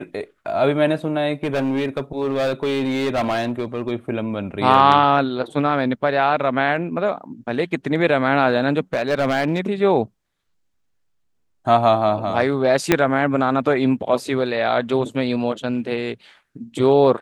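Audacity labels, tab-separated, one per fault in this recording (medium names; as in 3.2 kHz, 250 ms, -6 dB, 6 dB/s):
1.440000	3.910000	clipped -17 dBFS
8.930000	9.600000	clipped -14.5 dBFS
12.920000	12.920000	pop 0 dBFS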